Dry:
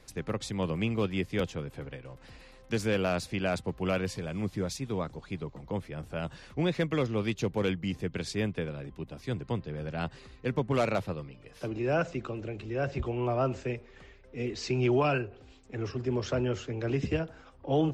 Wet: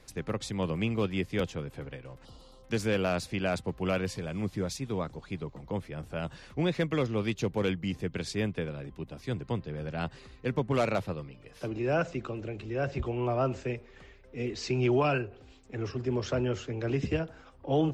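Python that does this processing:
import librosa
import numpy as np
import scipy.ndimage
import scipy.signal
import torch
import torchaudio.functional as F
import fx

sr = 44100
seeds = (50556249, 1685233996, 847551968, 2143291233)

y = fx.spec_box(x, sr, start_s=2.25, length_s=0.39, low_hz=1400.0, high_hz=2800.0, gain_db=-21)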